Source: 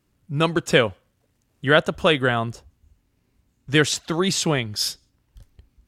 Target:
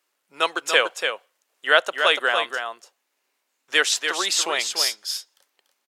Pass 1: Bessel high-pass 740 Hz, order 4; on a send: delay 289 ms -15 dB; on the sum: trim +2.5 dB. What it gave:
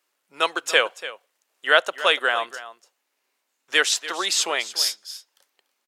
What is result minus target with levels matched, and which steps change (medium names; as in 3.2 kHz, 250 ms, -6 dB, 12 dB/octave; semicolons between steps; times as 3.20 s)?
echo-to-direct -8.5 dB
change: delay 289 ms -6.5 dB